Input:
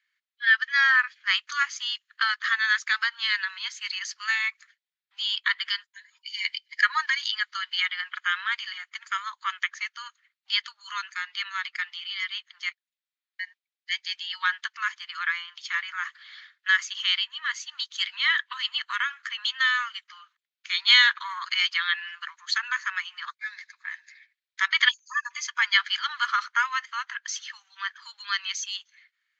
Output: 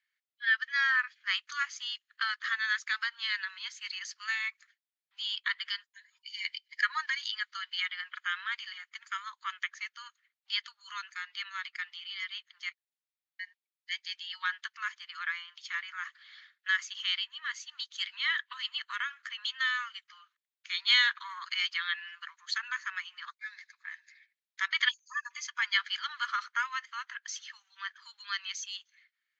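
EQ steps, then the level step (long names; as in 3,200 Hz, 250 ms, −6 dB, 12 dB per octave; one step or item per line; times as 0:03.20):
high-pass filter 820 Hz 12 dB per octave
−7.0 dB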